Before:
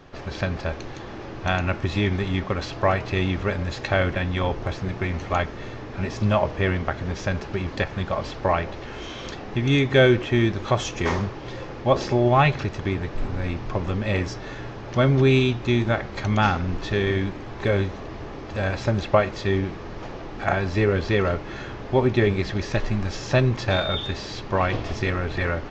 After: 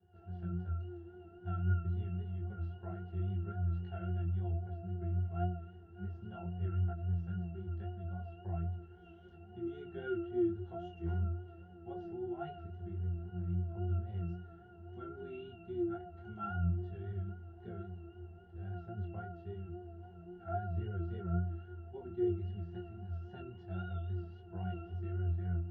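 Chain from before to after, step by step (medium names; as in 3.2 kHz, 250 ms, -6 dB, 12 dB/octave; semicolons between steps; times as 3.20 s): pitch-class resonator F, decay 0.67 s; vibrato 3.7 Hz 52 cents; detune thickener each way 10 cents; trim +3.5 dB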